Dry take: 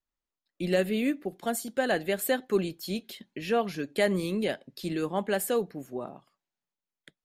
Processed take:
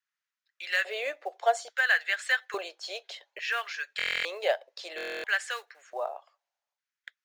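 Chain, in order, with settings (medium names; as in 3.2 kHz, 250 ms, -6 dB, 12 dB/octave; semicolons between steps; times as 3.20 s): elliptic band-pass 470–6600 Hz, stop band 40 dB; in parallel at -9 dB: short-mantissa float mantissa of 2-bit; on the sum: LFO high-pass square 0.59 Hz 680–1600 Hz; buffer glitch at 3.97/4.96 s, samples 1024, times 11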